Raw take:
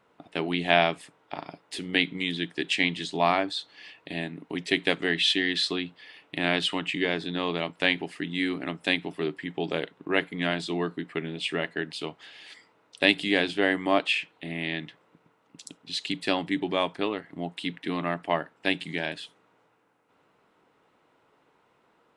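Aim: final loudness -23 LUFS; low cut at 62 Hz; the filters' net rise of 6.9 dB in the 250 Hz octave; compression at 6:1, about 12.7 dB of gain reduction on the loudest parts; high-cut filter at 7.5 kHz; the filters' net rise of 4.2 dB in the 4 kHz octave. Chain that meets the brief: high-pass 62 Hz; low-pass 7.5 kHz; peaking EQ 250 Hz +8.5 dB; peaking EQ 4 kHz +5.5 dB; compression 6:1, threshold -26 dBFS; trim +8 dB

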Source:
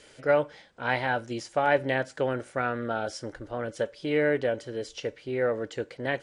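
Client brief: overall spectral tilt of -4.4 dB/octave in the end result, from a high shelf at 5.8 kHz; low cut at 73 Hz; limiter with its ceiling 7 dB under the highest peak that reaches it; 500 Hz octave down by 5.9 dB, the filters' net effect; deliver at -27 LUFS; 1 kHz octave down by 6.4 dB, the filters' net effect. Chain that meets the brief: high-pass 73 Hz; peaking EQ 500 Hz -5 dB; peaking EQ 1 kHz -7 dB; treble shelf 5.8 kHz -5.5 dB; trim +8.5 dB; peak limiter -13 dBFS

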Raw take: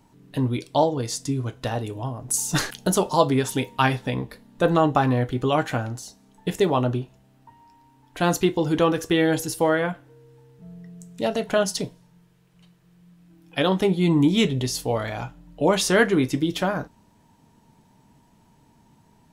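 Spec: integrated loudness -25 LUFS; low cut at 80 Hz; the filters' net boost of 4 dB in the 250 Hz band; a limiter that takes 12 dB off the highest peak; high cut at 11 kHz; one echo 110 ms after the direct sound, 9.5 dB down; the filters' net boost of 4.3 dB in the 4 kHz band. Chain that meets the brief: high-pass 80 Hz; low-pass 11 kHz; peaking EQ 250 Hz +5.5 dB; peaking EQ 4 kHz +5.5 dB; peak limiter -12.5 dBFS; delay 110 ms -9.5 dB; trim -1.5 dB

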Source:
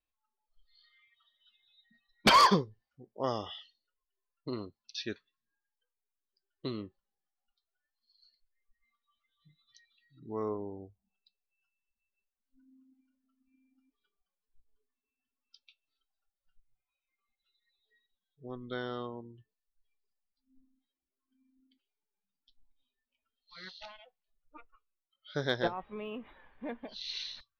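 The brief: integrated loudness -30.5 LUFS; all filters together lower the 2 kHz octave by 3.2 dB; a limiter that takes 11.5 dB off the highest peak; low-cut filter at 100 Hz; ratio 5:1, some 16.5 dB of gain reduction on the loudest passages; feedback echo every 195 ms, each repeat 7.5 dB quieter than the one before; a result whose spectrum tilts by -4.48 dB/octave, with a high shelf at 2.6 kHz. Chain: high-pass 100 Hz; peaking EQ 2 kHz -6 dB; treble shelf 2.6 kHz +4 dB; compression 5:1, threshold -38 dBFS; peak limiter -36 dBFS; feedback delay 195 ms, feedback 42%, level -7.5 dB; trim +17.5 dB

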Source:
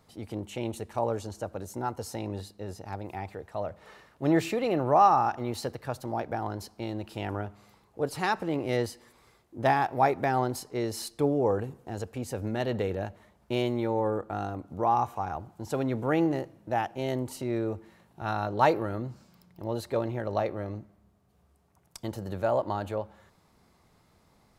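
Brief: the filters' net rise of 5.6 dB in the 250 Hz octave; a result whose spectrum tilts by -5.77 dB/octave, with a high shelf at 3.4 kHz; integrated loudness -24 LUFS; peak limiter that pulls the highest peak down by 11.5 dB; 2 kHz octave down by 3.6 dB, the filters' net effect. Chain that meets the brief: peaking EQ 250 Hz +7.5 dB; peaking EQ 2 kHz -7 dB; treble shelf 3.4 kHz +7.5 dB; trim +7.5 dB; peak limiter -12 dBFS

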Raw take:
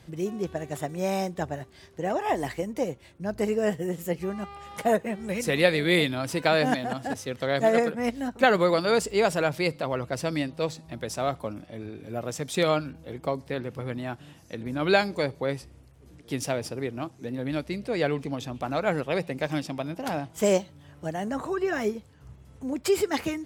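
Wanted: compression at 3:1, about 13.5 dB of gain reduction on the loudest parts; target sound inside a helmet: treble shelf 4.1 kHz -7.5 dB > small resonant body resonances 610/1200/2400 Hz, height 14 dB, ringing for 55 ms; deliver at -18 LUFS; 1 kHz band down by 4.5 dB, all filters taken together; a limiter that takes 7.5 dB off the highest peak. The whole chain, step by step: peaking EQ 1 kHz -6.5 dB; compression 3:1, threshold -36 dBFS; peak limiter -27 dBFS; treble shelf 4.1 kHz -7.5 dB; small resonant body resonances 610/1200/2400 Hz, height 14 dB, ringing for 55 ms; trim +18 dB

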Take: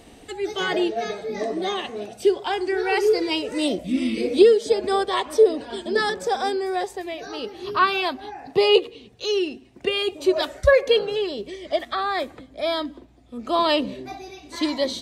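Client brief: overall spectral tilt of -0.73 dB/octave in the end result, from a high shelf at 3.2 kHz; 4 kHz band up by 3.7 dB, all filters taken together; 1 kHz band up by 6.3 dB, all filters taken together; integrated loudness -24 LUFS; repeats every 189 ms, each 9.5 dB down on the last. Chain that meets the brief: peaking EQ 1 kHz +8 dB; treble shelf 3.2 kHz -3 dB; peaking EQ 4 kHz +6.5 dB; feedback delay 189 ms, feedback 33%, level -9.5 dB; trim -4 dB

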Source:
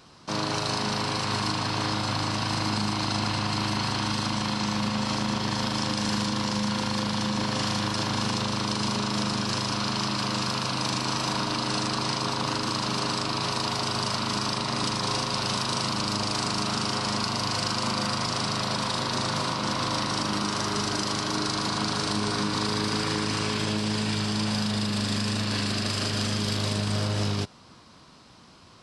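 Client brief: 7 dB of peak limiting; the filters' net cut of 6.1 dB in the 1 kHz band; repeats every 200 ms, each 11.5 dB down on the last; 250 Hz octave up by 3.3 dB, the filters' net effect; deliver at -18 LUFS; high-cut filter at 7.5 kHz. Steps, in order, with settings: low-pass 7.5 kHz; peaking EQ 250 Hz +4.5 dB; peaking EQ 1 kHz -7.5 dB; peak limiter -19.5 dBFS; feedback delay 200 ms, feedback 27%, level -11.5 dB; trim +10.5 dB

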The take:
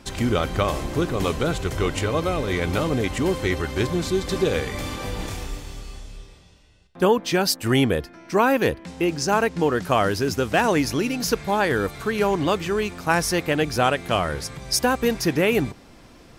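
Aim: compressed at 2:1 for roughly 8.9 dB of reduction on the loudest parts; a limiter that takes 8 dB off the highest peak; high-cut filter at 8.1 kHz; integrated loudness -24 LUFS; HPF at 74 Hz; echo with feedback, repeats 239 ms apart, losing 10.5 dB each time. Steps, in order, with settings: high-pass 74 Hz; low-pass 8.1 kHz; compression 2:1, threshold -31 dBFS; peak limiter -21 dBFS; feedback delay 239 ms, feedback 30%, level -10.5 dB; trim +7.5 dB

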